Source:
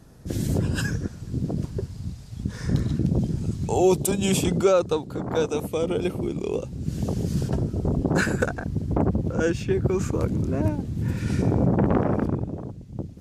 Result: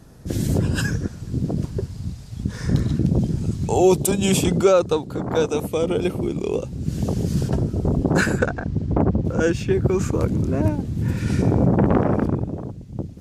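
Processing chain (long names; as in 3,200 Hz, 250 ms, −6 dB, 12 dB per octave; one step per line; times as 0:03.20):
0:08.39–0:09.25: high-frequency loss of the air 81 metres
level +3.5 dB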